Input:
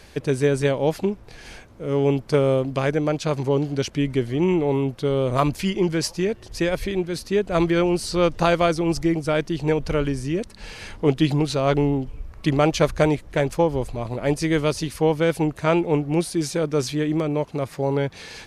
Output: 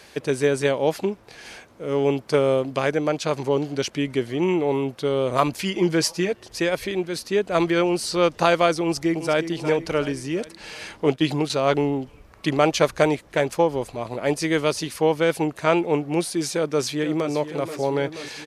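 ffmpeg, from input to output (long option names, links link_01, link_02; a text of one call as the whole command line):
ffmpeg -i in.wav -filter_complex "[0:a]asettb=1/sr,asplit=3[link_01][link_02][link_03];[link_01]atrim=end=5.734[link_04];[link_02]atrim=start=5.73:end=6.32,asetpts=PTS-STARTPTS,afade=type=in:duration=0.004:curve=qsin,afade=type=out:start_time=0.586:duration=0.004:curve=qsin,aecho=1:1:6.2:0.65,atrim=end_sample=26019[link_05];[link_03]atrim=start=6.316[link_06];[link_04][link_05]acrossfade=duration=0.004:curve1=hsin:curve2=qsin[link_07];[link_07][link_06]acrossfade=duration=0.004:curve1=qsin:curve2=hsin,asplit=2[link_08][link_09];[link_09]afade=type=in:start_time=8.84:duration=0.01,afade=type=out:start_time=9.46:duration=0.01,aecho=0:1:360|720|1080|1440|1800:0.298538|0.149269|0.0746346|0.0373173|0.0186586[link_10];[link_08][link_10]amix=inputs=2:normalize=0,asettb=1/sr,asplit=3[link_11][link_12][link_13];[link_11]atrim=end=11.064[link_14];[link_12]atrim=start=11.06:end=11.5,asetpts=PTS-STARTPTS,afade=type=in:duration=0.004:curve=qsin,afade=type=out:start_time=0.436:duration=0.004:curve=qsin,agate=range=-12dB:threshold=-28dB:ratio=16:release=100:detection=peak[link_15];[link_13]atrim=start=11.496[link_16];[link_14][link_15]acrossfade=duration=0.004:curve1=hsin:curve2=qsin[link_17];[link_17][link_16]acrossfade=duration=0.004:curve1=qsin:curve2=hsin,asplit=2[link_18][link_19];[link_19]afade=type=in:start_time=16.53:duration=0.01,afade=type=out:start_time=17.32:duration=0.01,aecho=0:1:480|960|1440|1920|2400|2880|3360|3840|4320|4800|5280|5760:0.251189|0.188391|0.141294|0.10597|0.0794777|0.0596082|0.0447062|0.0335296|0.0251472|0.0188604|0.0141453|0.010609[link_20];[link_18][link_20]amix=inputs=2:normalize=0,highpass=frequency=340:poles=1,volume=2dB" out.wav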